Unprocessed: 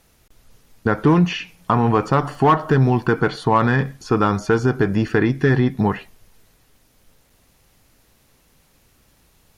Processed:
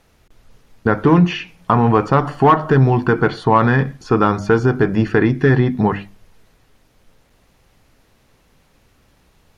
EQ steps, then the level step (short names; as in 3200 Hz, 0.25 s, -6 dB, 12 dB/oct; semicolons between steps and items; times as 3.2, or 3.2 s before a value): LPF 3200 Hz 6 dB/oct; notches 50/100/150/200/250/300/350 Hz; +3.5 dB